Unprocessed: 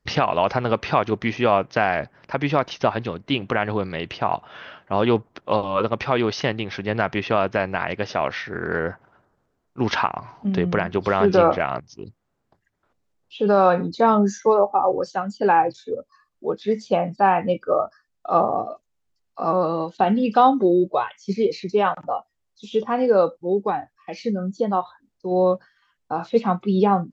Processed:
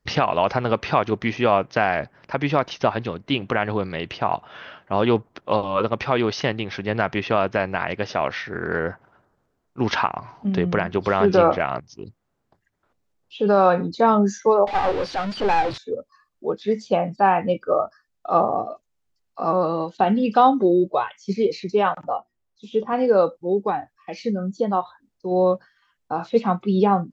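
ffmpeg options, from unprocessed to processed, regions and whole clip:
-filter_complex "[0:a]asettb=1/sr,asplit=3[a][b][c];[a]atrim=end=14.674[d];[b]atrim=start=14.67:end=15.78,asetpts=PTS-STARTPTS,afade=t=in:d=0.004:c=qsin,afade=t=out:st=1.106:d=0.004:c=qsin,aeval=exprs='val(0)+0.5*0.0944*sgn(val(0))':c=same,lowpass=f=4.3k:w=0.5412,lowpass=f=4.3k:w=1.3066,aeval=exprs='(tanh(3.98*val(0)+0.75)-tanh(0.75))/3.98':c=same[e];[c]atrim=start=15.776[f];[d][e]acrossfade=d=0.004:c1=hsin:c2=qsin[g];[g][f]acrossfade=d=0.004:c1=qsin:c2=hsin,asettb=1/sr,asplit=3[h][i][j];[h]atrim=end=22.174[k];[i]atrim=start=22.17:end=22.93,asetpts=PTS-STARTPTS,afade=t=in:d=0.004:c=qsin,afade=t=out:st=0.756:d=0.004:c=qsin,highshelf=f=2.5k:g=-9,bandreject=f=60:t=h:w=6,bandreject=f=120:t=h:w=6,bandreject=f=180:t=h:w=6,bandreject=f=240:t=h:w=6,bandreject=f=300:t=h:w=6,bandreject=f=360:t=h:w=6[l];[j]atrim=start=22.926[m];[k][l]acrossfade=d=0.004:c1=hsin:c2=qsin[n];[n][m]acrossfade=d=0.004:c1=qsin:c2=hsin"

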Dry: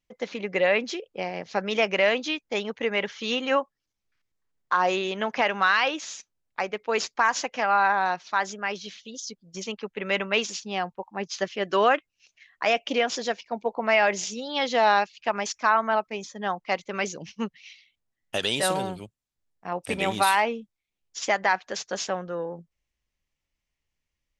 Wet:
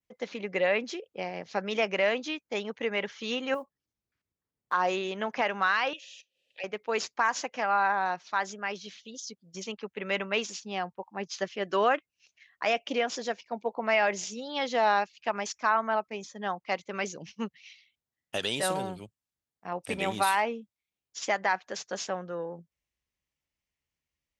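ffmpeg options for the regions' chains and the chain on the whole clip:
-filter_complex "[0:a]asettb=1/sr,asplit=3[a][b][c];[a]atrim=end=3.544[d];[b]atrim=start=3.54:end=4.73,asetpts=PTS-STARTPTS,afade=t=in:d=0.004:c=qsin,afade=t=out:st=1.186:d=0.004:c=qsin,tiltshelf=f=770:g=5,acompressor=threshold=-26dB:ratio=10:attack=3.2:release=140:knee=1:detection=peak,acrusher=bits=8:mode=log:mix=0:aa=0.000001[e];[c]atrim=start=4.726[f];[d][e]acrossfade=d=0.004:c1=hsin:c2=qsin[g];[g][f]acrossfade=d=0.004:c1=qsin:c2=hsin,asettb=1/sr,asplit=3[h][i][j];[h]atrim=end=5.934[k];[i]atrim=start=5.93:end=6.64,asetpts=PTS-STARTPTS,afade=t=in:d=0.004:c=qsin,afade=t=out:st=0.706:d=0.004:c=qsin,acompressor=mode=upward:threshold=-31dB:ratio=2.5:attack=3.2:release=140:knee=2.83:detection=peak,asplit=3[l][m][n];[l]bandpass=f=530:t=q:w=8,volume=0dB[o];[m]bandpass=f=1.84k:t=q:w=8,volume=-6dB[p];[n]bandpass=f=2.48k:t=q:w=8,volume=-9dB[q];[o][p][q]amix=inputs=3:normalize=0,highshelf=f=2.2k:t=q:w=3:g=12[r];[j]atrim=start=6.636[s];[k][r]acrossfade=d=0.004:c1=hsin:c2=qsin[t];[t][s]acrossfade=d=0.004:c1=qsin:c2=hsin,highpass=59,adynamicequalizer=threshold=0.01:dfrequency=3600:dqfactor=0.98:tfrequency=3600:tqfactor=0.98:attack=5:release=100:ratio=0.375:range=2:mode=cutabove:tftype=bell,volume=-4dB"

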